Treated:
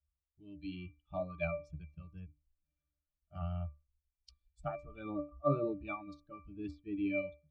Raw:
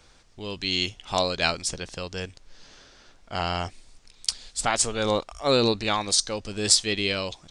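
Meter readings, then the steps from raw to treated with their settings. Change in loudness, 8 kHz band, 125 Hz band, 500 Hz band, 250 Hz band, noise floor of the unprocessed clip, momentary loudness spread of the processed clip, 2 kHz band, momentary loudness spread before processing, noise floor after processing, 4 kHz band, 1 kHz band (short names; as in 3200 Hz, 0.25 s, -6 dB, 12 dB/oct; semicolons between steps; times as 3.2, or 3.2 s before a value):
-14.5 dB, under -40 dB, -7.5 dB, -12.0 dB, -8.5 dB, -56 dBFS, 16 LU, -16.5 dB, 14 LU, under -85 dBFS, -37.5 dB, -15.5 dB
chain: per-bin expansion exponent 2; treble ducked by the level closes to 1400 Hz, closed at -24 dBFS; octave resonator D, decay 0.27 s; gain +11 dB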